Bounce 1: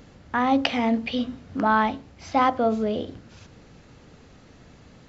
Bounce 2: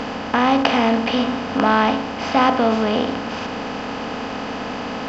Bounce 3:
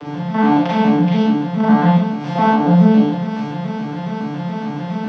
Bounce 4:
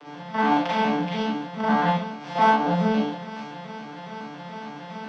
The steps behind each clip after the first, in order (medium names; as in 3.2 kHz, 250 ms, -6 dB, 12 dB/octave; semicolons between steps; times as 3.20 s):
spectral levelling over time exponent 0.4; trim +1 dB
vocoder on a broken chord minor triad, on D3, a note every 140 ms; fifteen-band graphic EQ 160 Hz +8 dB, 400 Hz -4 dB, 4 kHz +4 dB; reverberation RT60 0.40 s, pre-delay 33 ms, DRR -4 dB; trim -2.5 dB
high-pass 760 Hz 6 dB/octave; in parallel at -11 dB: saturation -24.5 dBFS, distortion -7 dB; on the sum: upward expansion 1.5:1, over -36 dBFS